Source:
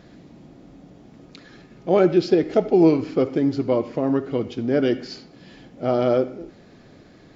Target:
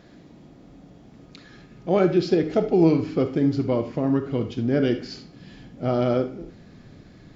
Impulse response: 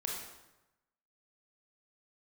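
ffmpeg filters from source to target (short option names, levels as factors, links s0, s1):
-filter_complex "[0:a]asubboost=boost=3:cutoff=230,asplit=2[s0][s1];[1:a]atrim=start_sample=2205,atrim=end_sample=3969,lowshelf=f=130:g=-11[s2];[s1][s2]afir=irnorm=-1:irlink=0,volume=0.708[s3];[s0][s3]amix=inputs=2:normalize=0,volume=0.531"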